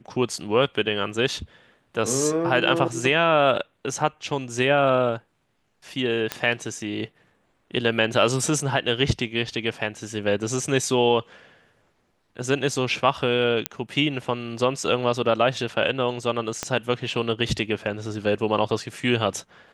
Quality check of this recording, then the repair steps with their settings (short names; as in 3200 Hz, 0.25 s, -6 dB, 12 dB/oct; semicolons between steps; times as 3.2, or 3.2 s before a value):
6.32 pop -9 dBFS
13.66 pop -5 dBFS
16.63 pop -11 dBFS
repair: de-click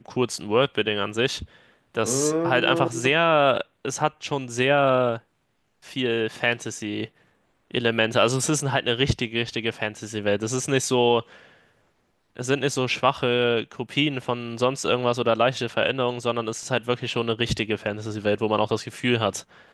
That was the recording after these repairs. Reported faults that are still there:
6.32 pop
16.63 pop